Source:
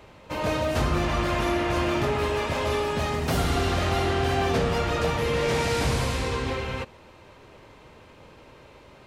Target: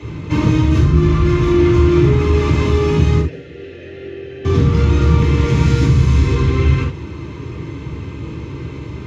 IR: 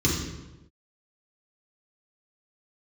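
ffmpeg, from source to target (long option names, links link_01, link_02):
-filter_complex "[0:a]bass=frequency=250:gain=15,treble=frequency=4000:gain=0,acompressor=threshold=-20dB:ratio=10,asettb=1/sr,asplit=3[link_01][link_02][link_03];[link_01]atrim=end=3.214[link_04];[link_02]atrim=start=3.21:end=4.45,asetpts=PTS-STARTPTS,afade=type=in:duration=0.004:curve=qsin,afade=type=out:start_time=1.236:duration=0.004:curve=qsin,asplit=3[link_05][link_06][link_07];[link_05]bandpass=frequency=530:width_type=q:width=8,volume=0dB[link_08];[link_06]bandpass=frequency=1840:width_type=q:width=8,volume=-6dB[link_09];[link_07]bandpass=frequency=2480:width_type=q:width=8,volume=-9dB[link_10];[link_08][link_09][link_10]amix=inputs=3:normalize=0[link_11];[link_03]atrim=start=4.446[link_12];[link_04][link_11]acrossfade=duration=0.004:curve1=hsin:curve2=qsin[link_13];[link_13][link_12]acrossfade=duration=0.004:curve1=qsin:curve2=hsin,asplit=2[link_14][link_15];[link_15]highpass=frequency=720:poles=1,volume=25dB,asoftclip=type=tanh:threshold=-9.5dB[link_16];[link_14][link_16]amix=inputs=2:normalize=0,lowpass=frequency=3700:poles=1,volume=-6dB[link_17];[1:a]atrim=start_sample=2205,atrim=end_sample=3528[link_18];[link_17][link_18]afir=irnorm=-1:irlink=0,volume=-15.5dB"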